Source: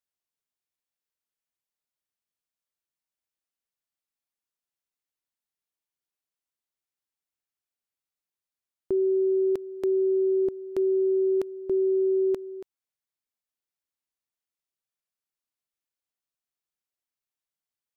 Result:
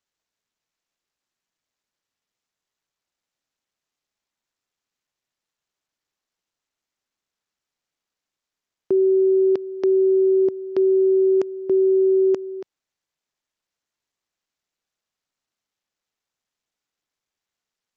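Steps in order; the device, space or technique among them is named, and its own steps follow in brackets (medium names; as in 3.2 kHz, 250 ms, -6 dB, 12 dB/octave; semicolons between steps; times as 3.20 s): Bluetooth headset (high-pass 140 Hz 12 dB/octave; resampled via 16 kHz; trim +6.5 dB; SBC 64 kbps 32 kHz)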